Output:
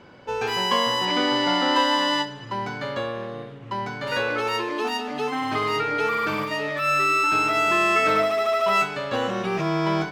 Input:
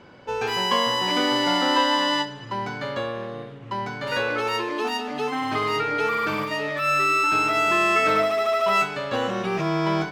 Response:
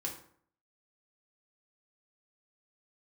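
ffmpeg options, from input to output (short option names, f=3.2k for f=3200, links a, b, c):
-filter_complex "[0:a]asettb=1/sr,asplit=3[a][b][c];[a]atrim=end=1.054[d];[b]atrim=start=1.05:end=1.76,asetpts=PTS-STARTPTS,afade=t=in:d=0.004:c=qsin,afade=t=out:st=0.706:d=0.004:c=qsin,acrossover=split=6300[e][f];[f]acompressor=threshold=-54dB:ratio=4:attack=1:release=60[g];[e][g]amix=inputs=2:normalize=0[h];[c]atrim=start=1.756[i];[d][h]acrossfade=d=0.004:c1=hsin:c2=qsin[j];[j][i]acrossfade=d=0.004:c1=qsin:c2=hsin"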